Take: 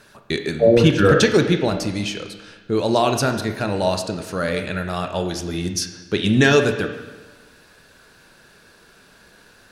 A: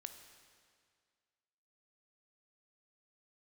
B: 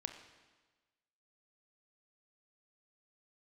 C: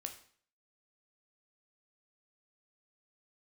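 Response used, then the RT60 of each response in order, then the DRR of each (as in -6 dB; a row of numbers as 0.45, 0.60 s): B; 2.0, 1.3, 0.50 s; 7.0, 6.0, 4.5 dB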